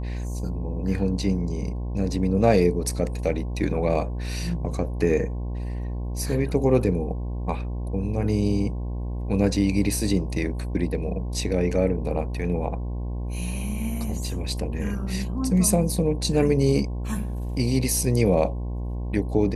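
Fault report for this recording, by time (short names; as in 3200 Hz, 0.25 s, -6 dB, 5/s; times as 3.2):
buzz 60 Hz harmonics 18 -29 dBFS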